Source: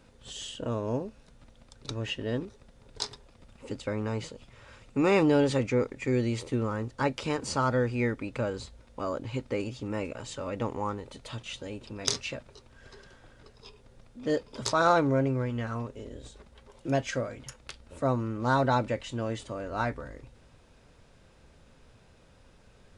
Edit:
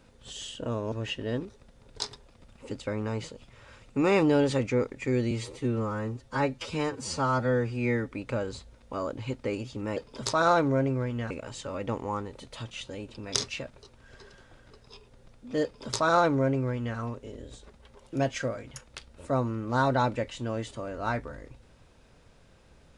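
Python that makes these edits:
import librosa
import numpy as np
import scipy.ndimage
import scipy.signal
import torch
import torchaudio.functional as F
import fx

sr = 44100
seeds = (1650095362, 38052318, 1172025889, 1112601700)

y = fx.edit(x, sr, fx.cut(start_s=0.92, length_s=1.0),
    fx.stretch_span(start_s=6.31, length_s=1.87, factor=1.5),
    fx.duplicate(start_s=14.36, length_s=1.34, to_s=10.03), tone=tone)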